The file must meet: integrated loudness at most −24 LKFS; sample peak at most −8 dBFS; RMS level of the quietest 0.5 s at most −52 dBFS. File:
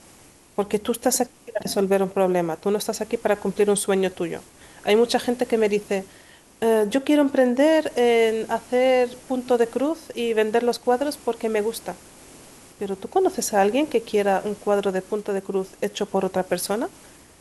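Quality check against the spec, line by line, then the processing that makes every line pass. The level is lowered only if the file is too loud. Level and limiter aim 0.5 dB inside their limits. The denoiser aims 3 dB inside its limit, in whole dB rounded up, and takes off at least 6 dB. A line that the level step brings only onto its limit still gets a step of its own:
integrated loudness −22.5 LKFS: out of spec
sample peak −6.5 dBFS: out of spec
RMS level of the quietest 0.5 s −51 dBFS: out of spec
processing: level −2 dB

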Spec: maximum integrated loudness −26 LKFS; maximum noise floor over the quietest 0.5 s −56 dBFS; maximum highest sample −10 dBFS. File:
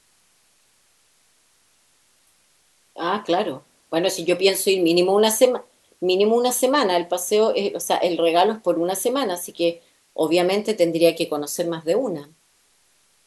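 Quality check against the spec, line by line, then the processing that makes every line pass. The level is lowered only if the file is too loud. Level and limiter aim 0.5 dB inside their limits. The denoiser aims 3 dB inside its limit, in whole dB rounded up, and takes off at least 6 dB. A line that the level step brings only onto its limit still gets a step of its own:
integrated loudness −20.5 LKFS: out of spec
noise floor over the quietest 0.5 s −61 dBFS: in spec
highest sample −2.5 dBFS: out of spec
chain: level −6 dB
brickwall limiter −10.5 dBFS

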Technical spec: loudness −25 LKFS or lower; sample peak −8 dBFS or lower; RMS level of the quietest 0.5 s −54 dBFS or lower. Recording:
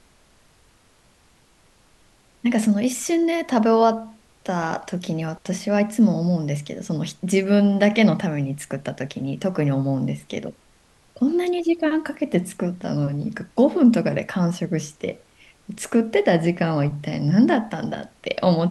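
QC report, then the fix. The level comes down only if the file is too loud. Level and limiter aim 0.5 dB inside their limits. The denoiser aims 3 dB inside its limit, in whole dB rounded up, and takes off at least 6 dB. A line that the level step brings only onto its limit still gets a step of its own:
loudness −22.0 LKFS: out of spec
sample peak −5.5 dBFS: out of spec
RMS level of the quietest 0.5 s −57 dBFS: in spec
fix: level −3.5 dB

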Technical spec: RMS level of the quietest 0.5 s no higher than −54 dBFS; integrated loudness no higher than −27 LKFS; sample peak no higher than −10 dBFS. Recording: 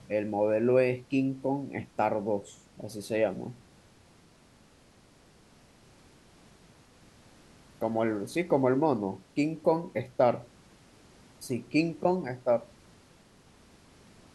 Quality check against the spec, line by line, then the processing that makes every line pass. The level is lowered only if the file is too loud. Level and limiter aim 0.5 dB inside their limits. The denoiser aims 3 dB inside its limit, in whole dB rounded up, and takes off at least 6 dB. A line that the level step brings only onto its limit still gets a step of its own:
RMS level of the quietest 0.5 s −59 dBFS: in spec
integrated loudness −29.5 LKFS: in spec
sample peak −11.0 dBFS: in spec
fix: no processing needed

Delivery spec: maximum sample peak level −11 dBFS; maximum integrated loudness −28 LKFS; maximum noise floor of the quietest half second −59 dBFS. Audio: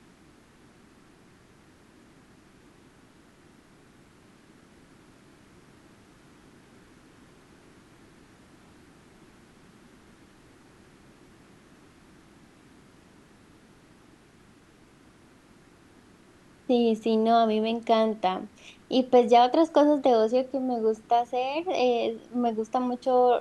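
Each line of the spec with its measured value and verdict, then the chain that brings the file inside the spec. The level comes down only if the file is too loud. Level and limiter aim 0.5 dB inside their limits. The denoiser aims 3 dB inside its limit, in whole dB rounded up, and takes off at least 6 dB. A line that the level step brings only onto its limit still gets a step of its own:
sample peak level −8.5 dBFS: out of spec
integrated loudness −24.5 LKFS: out of spec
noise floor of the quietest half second −56 dBFS: out of spec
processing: level −4 dB

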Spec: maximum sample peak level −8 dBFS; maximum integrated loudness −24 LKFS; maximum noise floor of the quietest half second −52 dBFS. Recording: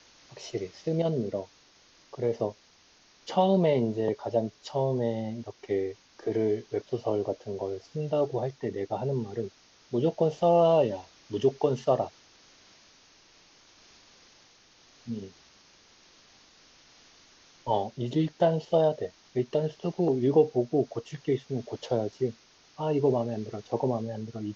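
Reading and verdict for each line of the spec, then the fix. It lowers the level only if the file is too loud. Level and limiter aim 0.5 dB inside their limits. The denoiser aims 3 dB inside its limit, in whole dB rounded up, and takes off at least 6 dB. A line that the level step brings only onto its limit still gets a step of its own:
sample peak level −11.0 dBFS: in spec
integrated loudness −29.0 LKFS: in spec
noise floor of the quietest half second −60 dBFS: in spec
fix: no processing needed

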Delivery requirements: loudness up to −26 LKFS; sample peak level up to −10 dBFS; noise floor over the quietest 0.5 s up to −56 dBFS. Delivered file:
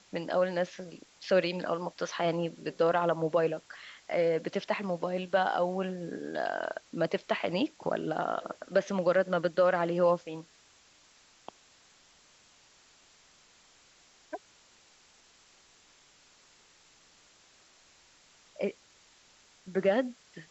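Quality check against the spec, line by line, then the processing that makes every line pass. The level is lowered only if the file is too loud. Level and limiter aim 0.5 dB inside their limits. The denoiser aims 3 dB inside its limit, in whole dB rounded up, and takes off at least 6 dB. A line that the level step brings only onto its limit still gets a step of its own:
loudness −30.5 LKFS: in spec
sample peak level −13.0 dBFS: in spec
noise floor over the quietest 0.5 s −62 dBFS: in spec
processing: no processing needed

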